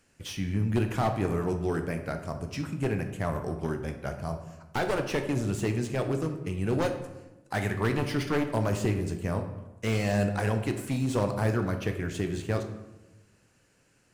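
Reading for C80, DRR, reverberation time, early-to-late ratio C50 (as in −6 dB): 11.0 dB, 5.5 dB, 1.1 s, 8.5 dB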